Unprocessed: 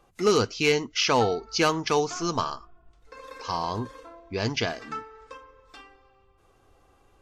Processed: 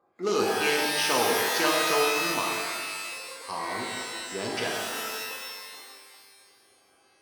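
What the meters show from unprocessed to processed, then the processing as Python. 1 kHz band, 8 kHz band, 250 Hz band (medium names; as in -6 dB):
-0.5 dB, +4.0 dB, -4.0 dB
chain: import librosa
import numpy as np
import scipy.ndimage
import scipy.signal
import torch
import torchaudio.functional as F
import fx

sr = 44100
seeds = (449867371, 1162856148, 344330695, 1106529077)

y = fx.wiener(x, sr, points=15)
y = scipy.signal.sosfilt(scipy.signal.butter(2, 230.0, 'highpass', fs=sr, output='sos'), y)
y = fx.rev_shimmer(y, sr, seeds[0], rt60_s=1.8, semitones=12, shimmer_db=-2, drr_db=-1.5)
y = F.gain(torch.from_numpy(y), -5.5).numpy()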